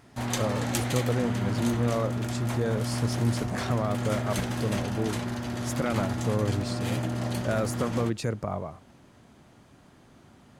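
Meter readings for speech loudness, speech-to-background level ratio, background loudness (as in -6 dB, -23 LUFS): -31.5 LUFS, -0.5 dB, -31.0 LUFS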